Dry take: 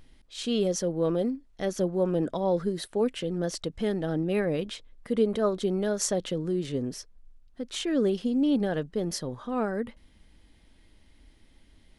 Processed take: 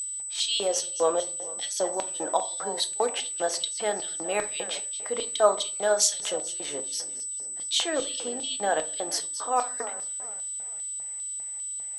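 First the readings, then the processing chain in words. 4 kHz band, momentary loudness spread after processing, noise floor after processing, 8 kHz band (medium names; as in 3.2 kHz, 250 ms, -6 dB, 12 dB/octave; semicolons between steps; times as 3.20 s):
+9.0 dB, 9 LU, -36 dBFS, +13.5 dB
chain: two-band feedback delay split 310 Hz, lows 328 ms, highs 221 ms, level -15.5 dB; whistle 8 kHz -36 dBFS; LFO high-pass square 2.5 Hz 770–3600 Hz; simulated room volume 270 m³, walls furnished, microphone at 0.66 m; trim +4.5 dB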